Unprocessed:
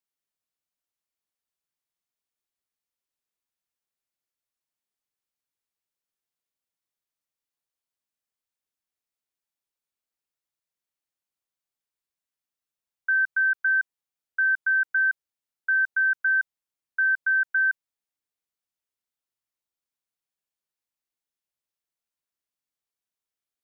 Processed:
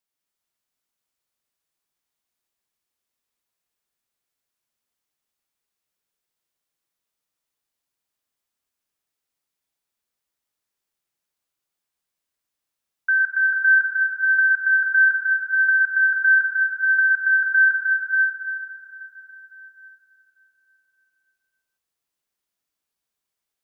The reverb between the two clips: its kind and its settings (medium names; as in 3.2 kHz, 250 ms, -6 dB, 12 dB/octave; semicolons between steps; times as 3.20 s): plate-style reverb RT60 3.8 s, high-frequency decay 0.85×, pre-delay 90 ms, DRR -1 dB; trim +3.5 dB